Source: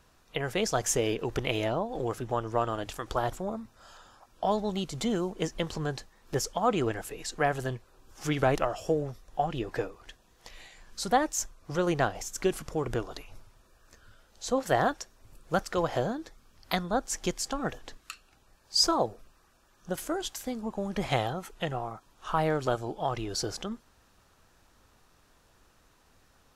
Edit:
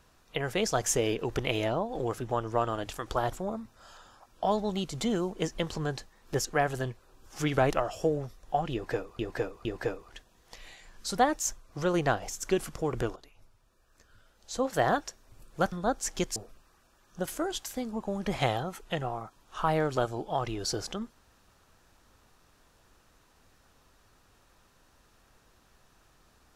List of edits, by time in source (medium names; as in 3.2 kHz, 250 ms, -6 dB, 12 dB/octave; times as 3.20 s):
6.45–7.30 s: delete
9.58–10.04 s: loop, 3 plays
13.09–14.95 s: fade in, from -14.5 dB
15.65–16.79 s: delete
17.43–19.06 s: delete